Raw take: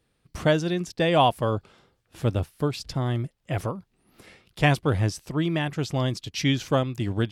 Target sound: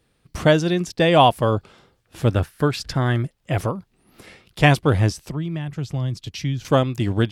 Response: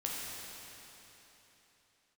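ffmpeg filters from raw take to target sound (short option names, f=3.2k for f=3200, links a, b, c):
-filter_complex "[0:a]asettb=1/sr,asplit=3[a][b][c];[a]atrim=end=2.314[d];[b]atrim=start=2.31:end=3.23,asetpts=PTS-STARTPTS,afade=t=in:d=0.004:c=qsin,afade=t=out:st=0.916:d=0.004:c=qsin,equalizer=f=1.6k:w=2.5:g=10[e];[c]atrim=start=3.226[f];[d][e]acrossfade=d=0.004:c1=hsin:c2=qsin[g];[g][f]acrossfade=d=0.004:c1=qsin:c2=hsin,asettb=1/sr,asplit=3[h][i][j];[h]atrim=end=5.114[k];[i]atrim=start=5.11:end=6.65,asetpts=PTS-STARTPTS,afade=t=in:d=0.004:c=qsin,afade=t=out:st=1.536:d=0.004:c=qsin,acrossover=split=160[l][m];[m]acompressor=threshold=-37dB:ratio=10[n];[l][n]amix=inputs=2:normalize=0[o];[j]atrim=start=6.646[p];[k][o]acrossfade=d=0.004:c1=hsin:c2=qsin[q];[q][p]acrossfade=d=0.004:c1=qsin:c2=hsin,volume=5.5dB"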